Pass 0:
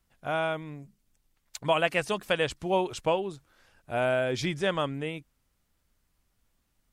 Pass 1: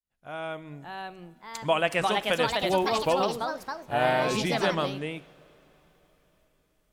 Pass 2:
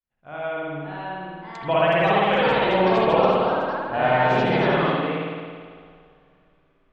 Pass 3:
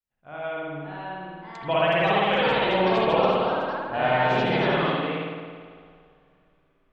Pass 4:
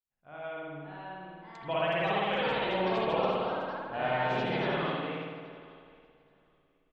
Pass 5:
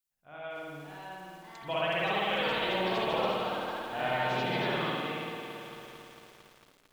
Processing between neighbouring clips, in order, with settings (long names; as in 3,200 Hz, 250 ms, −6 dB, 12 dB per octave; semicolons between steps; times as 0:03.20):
fade in at the beginning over 0.87 s; coupled-rooms reverb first 0.6 s, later 4.6 s, from −16 dB, DRR 15 dB; delay with pitch and tempo change per echo 619 ms, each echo +3 semitones, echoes 3
low-pass filter 2,800 Hz 12 dB per octave; spring reverb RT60 1.8 s, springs 54 ms, chirp 30 ms, DRR −6 dB
dynamic equaliser 3,300 Hz, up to +4 dB, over −39 dBFS, Q 1.2; level −3 dB
repeating echo 826 ms, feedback 16%, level −23.5 dB; level −8 dB
high-shelf EQ 3,300 Hz +10.5 dB; feedback echo at a low word length 225 ms, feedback 80%, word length 8 bits, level −11 dB; level −2 dB